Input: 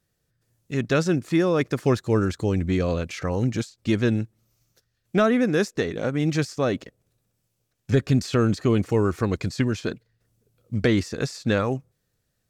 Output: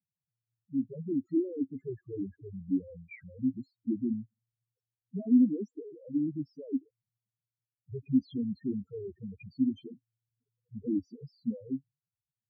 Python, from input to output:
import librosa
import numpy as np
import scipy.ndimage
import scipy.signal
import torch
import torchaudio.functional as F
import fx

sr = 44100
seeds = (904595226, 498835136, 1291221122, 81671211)

y = fx.spec_topn(x, sr, count=2)
y = fx.vowel_filter(y, sr, vowel='i')
y = y * 10.0 ** (6.0 / 20.0)